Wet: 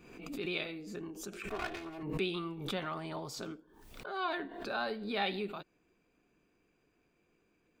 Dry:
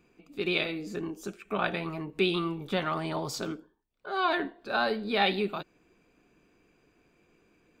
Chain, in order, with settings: 1.48–2.03 minimum comb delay 2.8 ms; backwards sustainer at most 57 dB/s; gain -8.5 dB

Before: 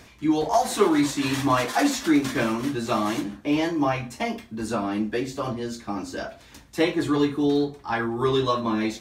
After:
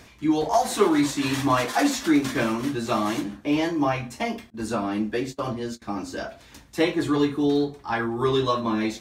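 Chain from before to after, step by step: 4.5–5.82 gate -32 dBFS, range -25 dB

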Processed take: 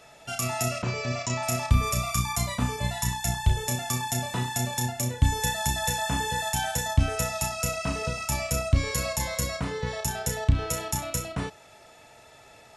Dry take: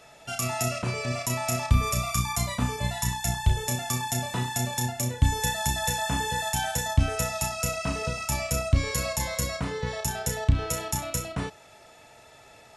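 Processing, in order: 0.82–1.43 steep low-pass 7500 Hz 72 dB/oct

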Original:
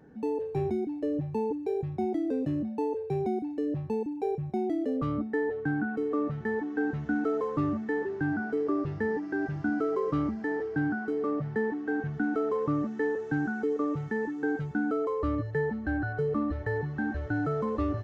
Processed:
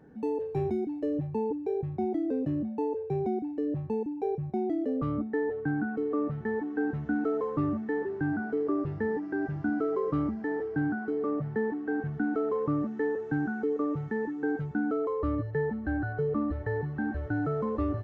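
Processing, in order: high shelf 2900 Hz -4.5 dB, from 1.27 s -12 dB

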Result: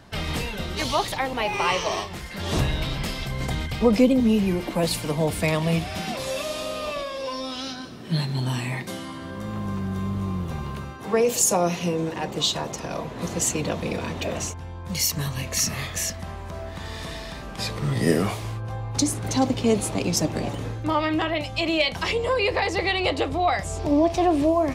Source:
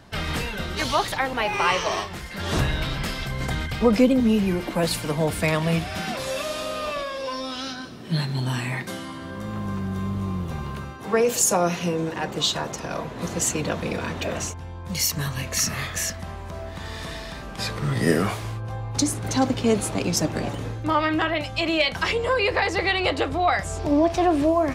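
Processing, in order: dynamic EQ 1500 Hz, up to -7 dB, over -43 dBFS, Q 2.4

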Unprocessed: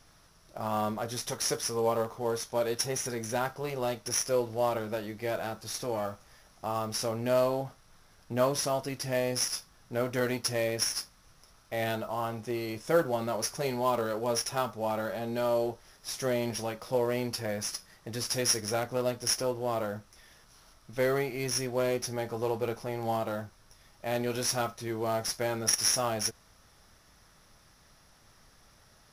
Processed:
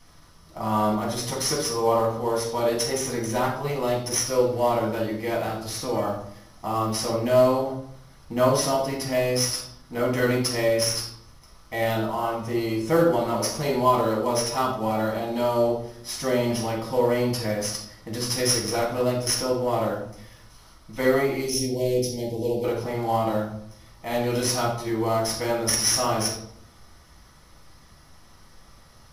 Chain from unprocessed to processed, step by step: 21.41–22.64 Butterworth band-stop 1300 Hz, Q 0.55; reverb RT60 0.70 s, pre-delay 4 ms, DRR -3 dB; ending taper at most 210 dB/s

